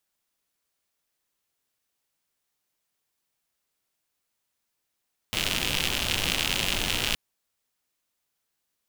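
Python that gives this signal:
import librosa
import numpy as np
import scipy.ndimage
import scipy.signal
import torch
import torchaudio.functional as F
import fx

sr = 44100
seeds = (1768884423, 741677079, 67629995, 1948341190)

y = fx.rain(sr, seeds[0], length_s=1.82, drops_per_s=110.0, hz=2900.0, bed_db=-2.5)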